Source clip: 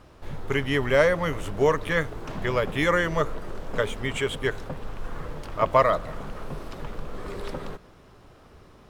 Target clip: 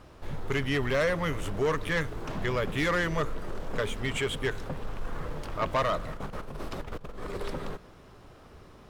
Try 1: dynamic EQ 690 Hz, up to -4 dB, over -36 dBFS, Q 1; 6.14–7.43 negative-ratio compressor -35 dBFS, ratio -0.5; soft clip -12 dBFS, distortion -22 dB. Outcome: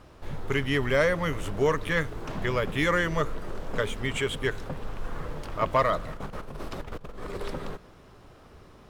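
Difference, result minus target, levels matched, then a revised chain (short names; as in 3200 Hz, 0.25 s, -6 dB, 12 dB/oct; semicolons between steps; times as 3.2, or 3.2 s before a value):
soft clip: distortion -11 dB
dynamic EQ 690 Hz, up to -4 dB, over -36 dBFS, Q 1; 6.14–7.43 negative-ratio compressor -35 dBFS, ratio -0.5; soft clip -21 dBFS, distortion -11 dB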